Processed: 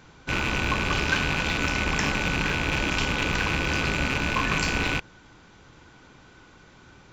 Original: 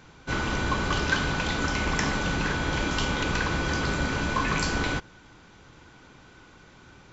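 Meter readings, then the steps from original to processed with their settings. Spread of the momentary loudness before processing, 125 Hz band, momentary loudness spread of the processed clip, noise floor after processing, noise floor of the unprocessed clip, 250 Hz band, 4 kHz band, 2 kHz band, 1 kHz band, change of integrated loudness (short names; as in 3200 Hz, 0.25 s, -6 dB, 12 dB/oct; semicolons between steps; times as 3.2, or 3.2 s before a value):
3 LU, +0.5 dB, 2 LU, -53 dBFS, -53 dBFS, 0.0 dB, +2.5 dB, +2.5 dB, 0.0 dB, +2.0 dB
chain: rattling part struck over -36 dBFS, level -15 dBFS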